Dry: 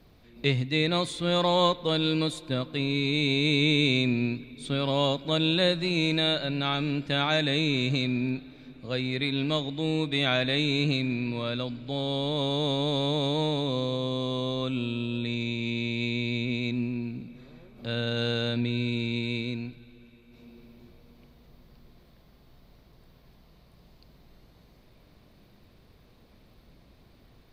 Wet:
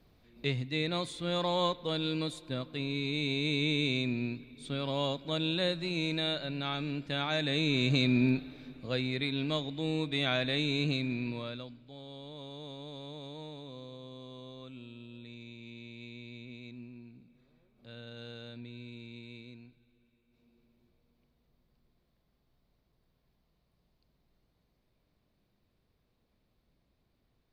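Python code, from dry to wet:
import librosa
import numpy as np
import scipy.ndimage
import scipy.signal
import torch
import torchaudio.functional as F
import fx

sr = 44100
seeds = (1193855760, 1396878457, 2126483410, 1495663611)

y = fx.gain(x, sr, db=fx.line((7.3, -7.0), (8.24, 2.5), (9.31, -5.0), (11.29, -5.0), (11.91, -18.0)))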